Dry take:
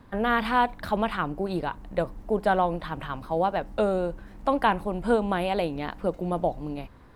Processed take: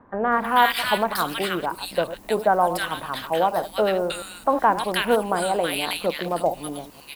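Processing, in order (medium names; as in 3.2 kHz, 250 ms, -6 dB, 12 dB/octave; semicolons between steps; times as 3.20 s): chunks repeated in reverse 103 ms, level -11.5 dB; RIAA curve recording; bands offset in time lows, highs 320 ms, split 1.5 kHz; trim +6 dB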